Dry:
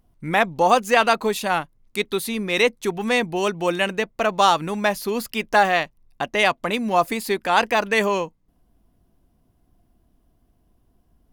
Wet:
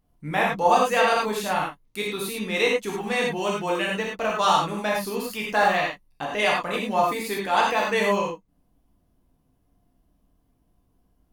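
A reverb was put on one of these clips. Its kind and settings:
reverb whose tail is shaped and stops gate 130 ms flat, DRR −4 dB
level −8 dB

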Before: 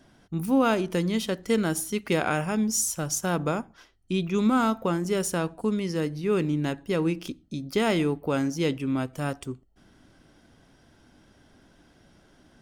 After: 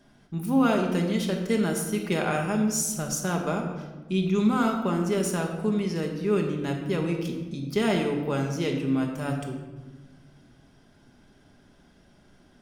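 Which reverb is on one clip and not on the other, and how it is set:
rectangular room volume 990 cubic metres, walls mixed, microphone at 1.3 metres
level −3 dB

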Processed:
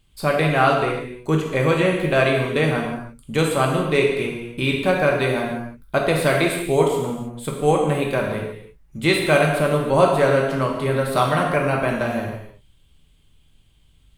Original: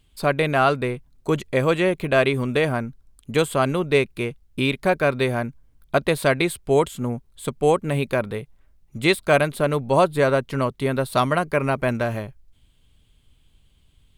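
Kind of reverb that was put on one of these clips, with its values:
reverb whose tail is shaped and stops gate 350 ms falling, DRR −1 dB
level −1.5 dB

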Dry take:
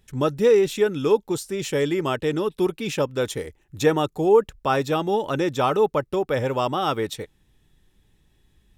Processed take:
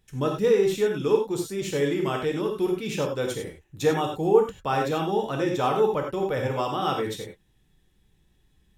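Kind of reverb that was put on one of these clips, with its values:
reverb whose tail is shaped and stops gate 120 ms flat, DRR 1 dB
level −5.5 dB

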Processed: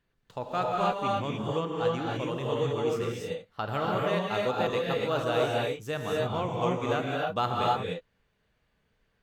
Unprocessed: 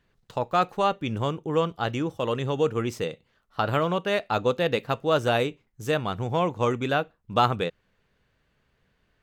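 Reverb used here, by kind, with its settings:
reverb whose tail is shaped and stops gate 320 ms rising, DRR −3 dB
level −8 dB

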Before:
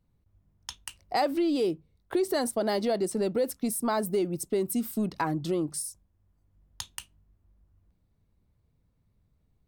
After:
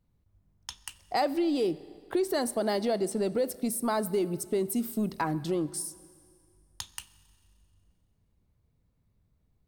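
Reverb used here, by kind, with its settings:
four-comb reverb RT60 2.1 s, combs from 30 ms, DRR 17.5 dB
level −1 dB

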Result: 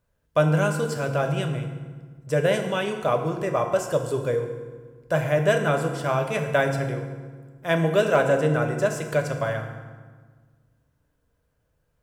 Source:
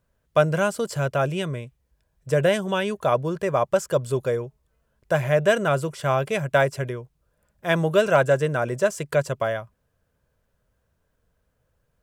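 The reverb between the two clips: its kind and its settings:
feedback delay network reverb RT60 1.5 s, low-frequency decay 1.4×, high-frequency decay 0.7×, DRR 3.5 dB
level −2.5 dB

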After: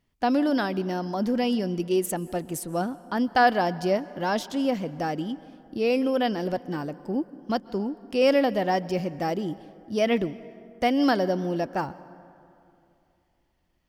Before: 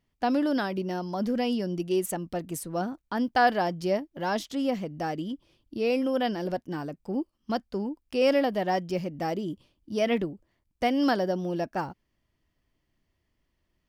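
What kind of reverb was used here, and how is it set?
dense smooth reverb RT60 2.7 s, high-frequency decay 0.45×, pre-delay 115 ms, DRR 18 dB
level +2.5 dB

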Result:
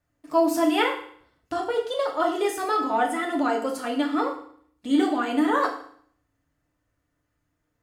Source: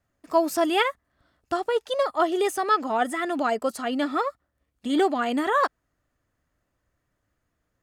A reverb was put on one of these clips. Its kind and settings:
feedback delay network reverb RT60 0.58 s, low-frequency decay 1.3×, high-frequency decay 1×, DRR 0 dB
level −3.5 dB

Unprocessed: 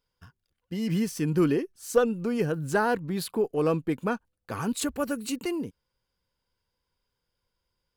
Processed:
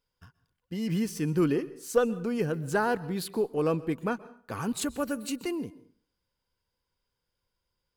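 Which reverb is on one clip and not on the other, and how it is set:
dense smooth reverb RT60 0.51 s, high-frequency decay 0.75×, pre-delay 115 ms, DRR 18.5 dB
level −2 dB

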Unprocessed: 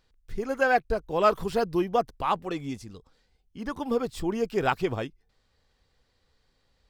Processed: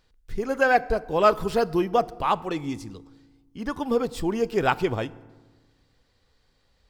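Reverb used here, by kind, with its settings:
feedback delay network reverb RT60 1.3 s, low-frequency decay 1.4×, high-frequency decay 0.6×, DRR 17.5 dB
level +3 dB

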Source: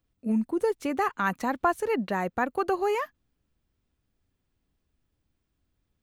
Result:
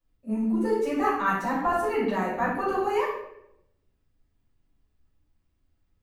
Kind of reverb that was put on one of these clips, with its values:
rectangular room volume 220 cubic metres, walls mixed, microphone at 5.6 metres
level −14 dB

